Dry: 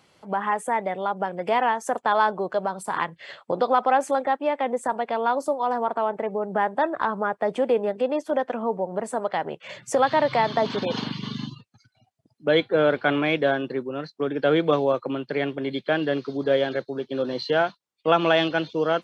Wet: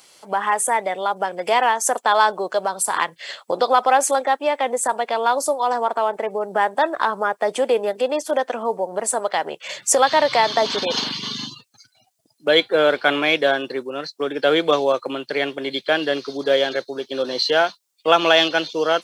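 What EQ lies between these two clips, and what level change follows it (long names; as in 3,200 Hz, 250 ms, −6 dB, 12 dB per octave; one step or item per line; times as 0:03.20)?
bass and treble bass −13 dB, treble +8 dB
high-shelf EQ 3,600 Hz +8 dB
+4.0 dB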